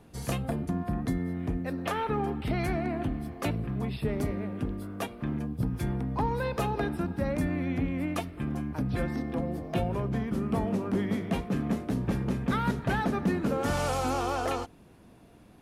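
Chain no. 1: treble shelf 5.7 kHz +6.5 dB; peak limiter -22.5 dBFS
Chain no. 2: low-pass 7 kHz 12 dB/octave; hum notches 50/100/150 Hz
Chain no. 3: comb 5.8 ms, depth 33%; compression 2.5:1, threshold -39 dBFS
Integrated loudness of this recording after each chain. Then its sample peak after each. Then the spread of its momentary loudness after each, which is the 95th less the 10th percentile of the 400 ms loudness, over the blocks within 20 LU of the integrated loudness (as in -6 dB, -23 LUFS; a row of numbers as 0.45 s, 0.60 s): -32.5 LUFS, -31.0 LUFS, -39.0 LUFS; -22.5 dBFS, -15.0 dBFS, -24.0 dBFS; 3 LU, 5 LU, 3 LU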